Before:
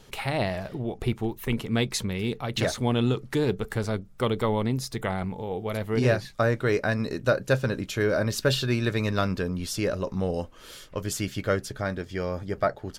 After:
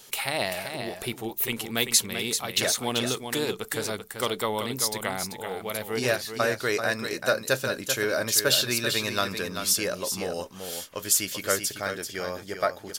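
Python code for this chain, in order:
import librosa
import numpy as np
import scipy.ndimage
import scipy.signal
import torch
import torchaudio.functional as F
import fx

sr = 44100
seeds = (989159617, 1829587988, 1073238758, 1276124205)

y = fx.riaa(x, sr, side='recording')
y = y + 10.0 ** (-7.5 / 20.0) * np.pad(y, (int(388 * sr / 1000.0), 0))[:len(y)]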